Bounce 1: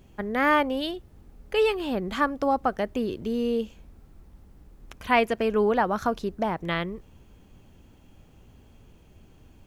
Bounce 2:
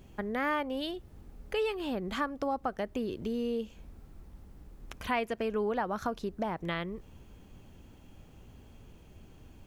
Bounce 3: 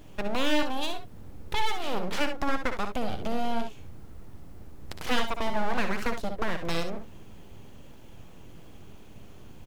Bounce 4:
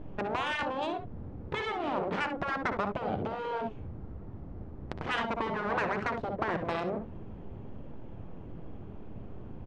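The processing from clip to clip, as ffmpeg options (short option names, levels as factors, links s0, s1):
-af "acompressor=threshold=0.0178:ratio=2"
-af "aeval=exprs='abs(val(0))':c=same,aecho=1:1:60|70:0.335|0.282,volume=2"
-af "adynamicsmooth=sensitivity=0.5:basefreq=1200,afftfilt=real='re*lt(hypot(re,im),0.126)':imag='im*lt(hypot(re,im),0.126)':win_size=1024:overlap=0.75,aresample=22050,aresample=44100,volume=2"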